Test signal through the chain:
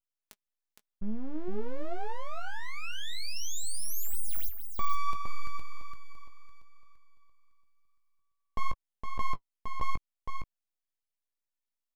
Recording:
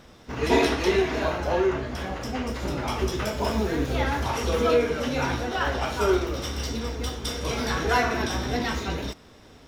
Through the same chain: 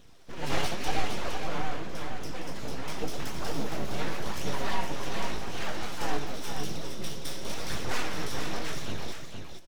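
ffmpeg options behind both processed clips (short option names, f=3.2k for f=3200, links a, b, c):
-filter_complex "[0:a]equalizer=f=1k:t=o:w=2.3:g=-5.5,aeval=exprs='abs(val(0))':c=same,flanger=delay=0.3:depth=7.1:regen=52:speed=0.9:shape=sinusoidal,asplit=2[a][b];[b]adelay=19,volume=-11dB[c];[a][c]amix=inputs=2:normalize=0,aecho=1:1:463:0.501"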